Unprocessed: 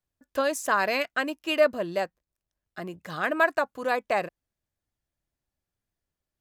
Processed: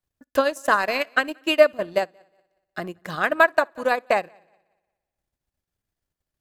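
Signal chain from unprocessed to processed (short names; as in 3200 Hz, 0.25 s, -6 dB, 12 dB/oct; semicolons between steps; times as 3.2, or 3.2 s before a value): multi-head echo 60 ms, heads first and third, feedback 44%, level -19.5 dB; transient shaper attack +6 dB, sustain -11 dB; gain +2 dB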